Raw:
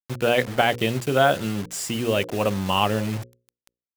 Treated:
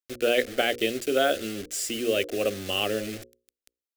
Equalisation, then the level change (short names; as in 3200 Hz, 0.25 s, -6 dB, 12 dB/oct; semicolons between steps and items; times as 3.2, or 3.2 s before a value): bell 120 Hz -11.5 dB 0.72 oct; fixed phaser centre 390 Hz, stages 4; 0.0 dB